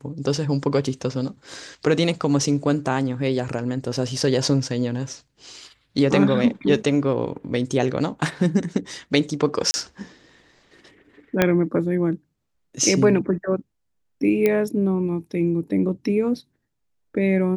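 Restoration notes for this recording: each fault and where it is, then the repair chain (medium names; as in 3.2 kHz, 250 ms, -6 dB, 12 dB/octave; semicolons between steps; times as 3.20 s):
9.71–9.74 s: dropout 30 ms
11.42 s: pop -3 dBFS
14.46 s: pop -8 dBFS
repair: de-click; interpolate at 9.71 s, 30 ms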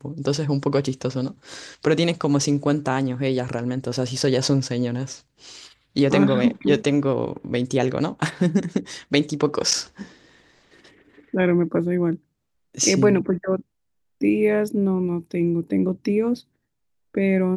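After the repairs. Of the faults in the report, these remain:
11.42 s: pop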